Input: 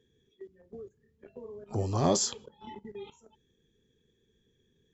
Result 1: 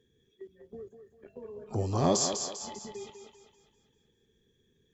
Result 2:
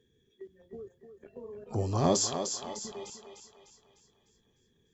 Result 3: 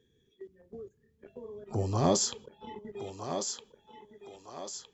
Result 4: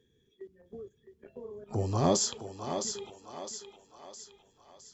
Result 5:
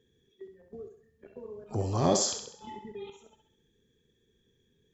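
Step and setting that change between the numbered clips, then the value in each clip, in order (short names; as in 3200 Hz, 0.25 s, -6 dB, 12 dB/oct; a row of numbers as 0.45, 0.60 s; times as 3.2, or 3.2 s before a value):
thinning echo, time: 198, 301, 1262, 661, 66 ms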